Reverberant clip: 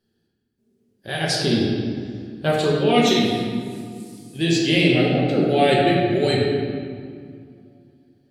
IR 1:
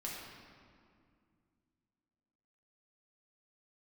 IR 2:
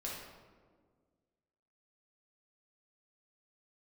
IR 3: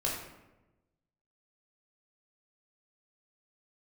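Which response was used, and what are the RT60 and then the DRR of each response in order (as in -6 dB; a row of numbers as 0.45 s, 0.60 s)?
1; 2.2 s, 1.7 s, 1.0 s; -5.0 dB, -5.0 dB, -3.5 dB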